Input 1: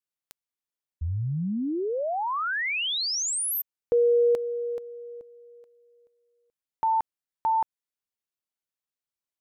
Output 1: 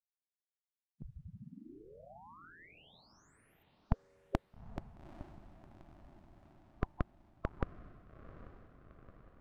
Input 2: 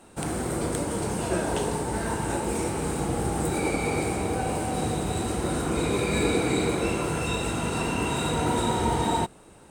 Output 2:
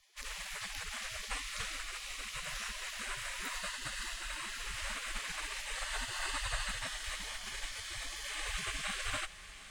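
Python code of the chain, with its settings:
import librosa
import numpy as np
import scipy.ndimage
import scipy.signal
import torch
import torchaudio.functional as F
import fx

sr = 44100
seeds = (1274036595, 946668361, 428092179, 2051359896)

y = fx.spec_gate(x, sr, threshold_db=-25, keep='weak')
y = fx.riaa(y, sr, side='playback')
y = fx.echo_diffused(y, sr, ms=840, feedback_pct=59, wet_db=-14.0)
y = F.gain(torch.from_numpy(y), 8.0).numpy()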